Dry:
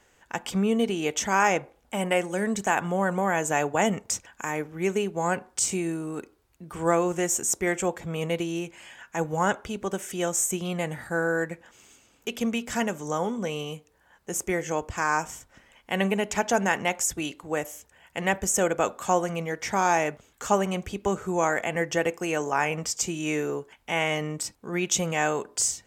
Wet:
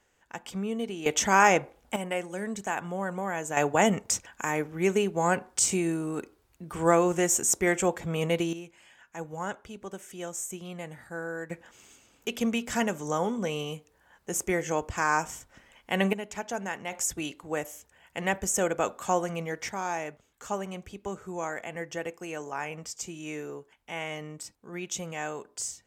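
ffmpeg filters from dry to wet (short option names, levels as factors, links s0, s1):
-af "asetnsamples=n=441:p=0,asendcmd='1.06 volume volume 2dB;1.96 volume volume -7dB;3.57 volume volume 1dB;8.53 volume volume -10dB;11.5 volume volume -0.5dB;16.13 volume volume -10dB;16.92 volume volume -3dB;19.69 volume volume -9.5dB',volume=0.398"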